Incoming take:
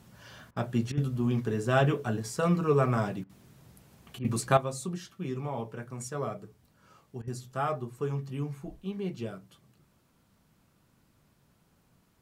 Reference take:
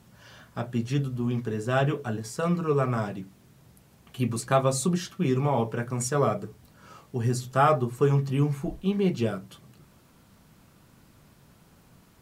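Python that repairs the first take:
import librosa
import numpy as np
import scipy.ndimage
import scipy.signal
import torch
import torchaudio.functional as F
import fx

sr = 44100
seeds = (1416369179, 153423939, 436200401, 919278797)

y = fx.fix_interpolate(x, sr, at_s=(0.51, 0.92, 3.24, 4.19, 7.22), length_ms=53.0)
y = fx.gain(y, sr, db=fx.steps((0.0, 0.0), (4.57, 10.0)))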